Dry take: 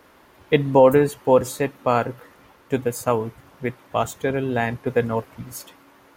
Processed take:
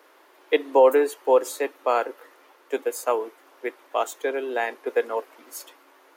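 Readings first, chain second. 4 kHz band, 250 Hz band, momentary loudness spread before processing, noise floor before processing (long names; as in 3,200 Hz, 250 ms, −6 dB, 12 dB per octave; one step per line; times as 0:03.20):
−2.0 dB, −10.0 dB, 16 LU, −53 dBFS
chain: Butterworth high-pass 310 Hz 48 dB per octave
level −2 dB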